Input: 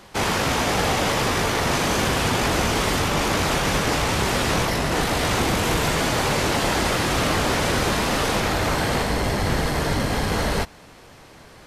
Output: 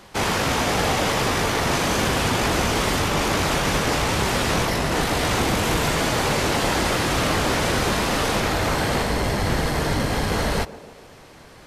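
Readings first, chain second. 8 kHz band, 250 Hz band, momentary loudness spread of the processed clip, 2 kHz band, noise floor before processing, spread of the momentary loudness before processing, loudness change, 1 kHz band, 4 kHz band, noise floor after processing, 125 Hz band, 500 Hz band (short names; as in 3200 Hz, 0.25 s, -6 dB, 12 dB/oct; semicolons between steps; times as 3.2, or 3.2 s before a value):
0.0 dB, 0.0 dB, 2 LU, 0.0 dB, -46 dBFS, 2 LU, 0.0 dB, 0.0 dB, 0.0 dB, -46 dBFS, 0.0 dB, 0.0 dB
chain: narrowing echo 0.142 s, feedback 66%, band-pass 410 Hz, level -14 dB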